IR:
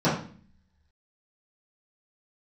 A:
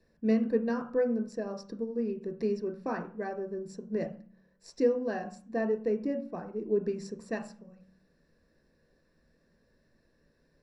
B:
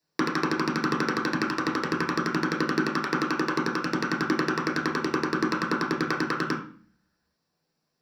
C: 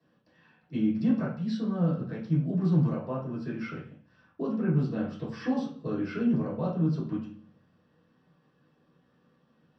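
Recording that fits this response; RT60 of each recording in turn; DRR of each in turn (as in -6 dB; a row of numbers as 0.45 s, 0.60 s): C; 0.45 s, 0.45 s, 0.45 s; 5.0 dB, -4.5 dB, -13.0 dB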